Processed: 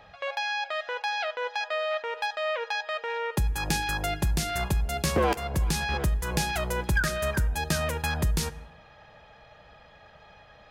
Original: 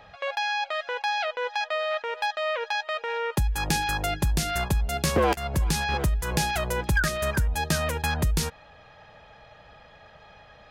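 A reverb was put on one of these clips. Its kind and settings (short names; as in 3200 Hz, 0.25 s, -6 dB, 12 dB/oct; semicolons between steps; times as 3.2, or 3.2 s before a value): plate-style reverb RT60 1.2 s, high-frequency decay 0.4×, DRR 15.5 dB; gain -2 dB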